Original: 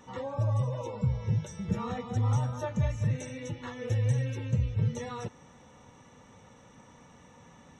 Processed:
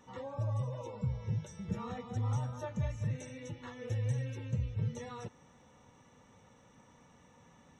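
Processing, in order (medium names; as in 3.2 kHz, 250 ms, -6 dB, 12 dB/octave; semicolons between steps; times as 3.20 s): trim -6.5 dB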